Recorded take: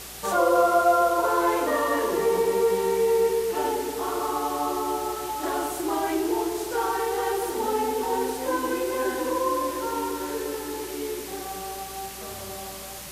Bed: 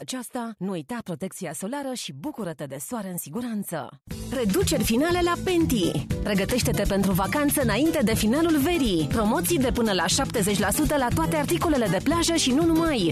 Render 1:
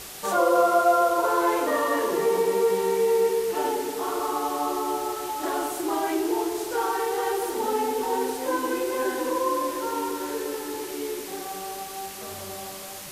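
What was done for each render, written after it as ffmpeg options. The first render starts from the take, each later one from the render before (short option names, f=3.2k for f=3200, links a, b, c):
-af "bandreject=f=60:t=h:w=4,bandreject=f=120:t=h:w=4,bandreject=f=180:t=h:w=4,bandreject=f=240:t=h:w=4"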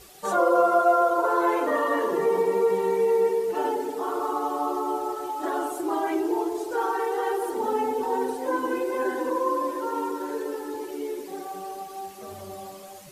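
-af "afftdn=nr=12:nf=-38"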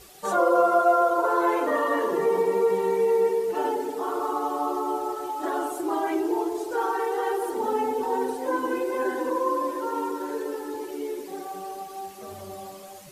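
-af anull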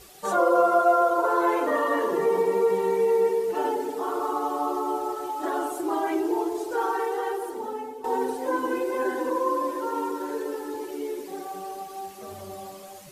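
-filter_complex "[0:a]asplit=2[a][b];[a]atrim=end=8.04,asetpts=PTS-STARTPTS,afade=t=out:st=6.97:d=1.07:silence=0.188365[c];[b]atrim=start=8.04,asetpts=PTS-STARTPTS,afade=t=in:d=0.004:c=hsin:silence=0.188365[d];[c][d]concat=n=2:v=0:a=1"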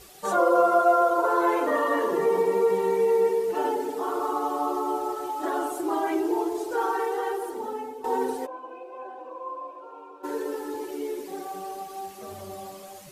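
-filter_complex "[0:a]asplit=3[a][b][c];[a]afade=t=out:st=8.45:d=0.02[d];[b]asplit=3[e][f][g];[e]bandpass=f=730:t=q:w=8,volume=0dB[h];[f]bandpass=f=1.09k:t=q:w=8,volume=-6dB[i];[g]bandpass=f=2.44k:t=q:w=8,volume=-9dB[j];[h][i][j]amix=inputs=3:normalize=0,afade=t=in:st=8.45:d=0.02,afade=t=out:st=10.23:d=0.02[k];[c]afade=t=in:st=10.23:d=0.02[l];[d][k][l]amix=inputs=3:normalize=0"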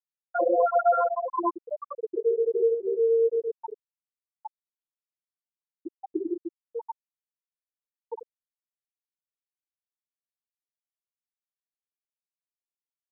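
-af "lowpass=f=3k:w=0.5412,lowpass=f=3k:w=1.3066,afftfilt=real='re*gte(hypot(re,im),0.562)':imag='im*gte(hypot(re,im),0.562)':win_size=1024:overlap=0.75"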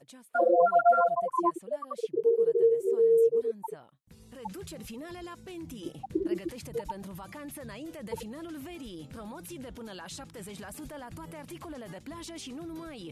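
-filter_complex "[1:a]volume=-20dB[a];[0:a][a]amix=inputs=2:normalize=0"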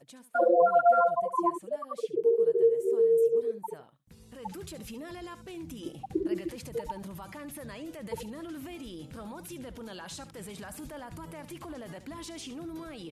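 -af "aecho=1:1:71:0.2"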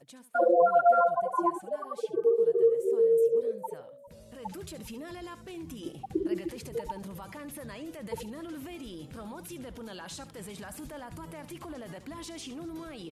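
-filter_complex "[0:a]asplit=4[a][b][c][d];[b]adelay=402,afreqshift=54,volume=-22.5dB[e];[c]adelay=804,afreqshift=108,volume=-29.8dB[f];[d]adelay=1206,afreqshift=162,volume=-37.2dB[g];[a][e][f][g]amix=inputs=4:normalize=0"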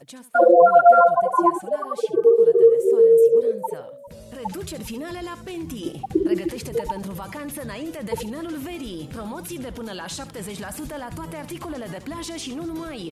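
-af "volume=9.5dB,alimiter=limit=-3dB:level=0:latency=1"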